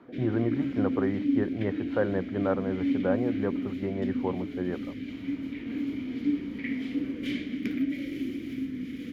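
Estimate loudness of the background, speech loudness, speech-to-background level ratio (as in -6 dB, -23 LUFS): -32.0 LUFS, -31.5 LUFS, 0.5 dB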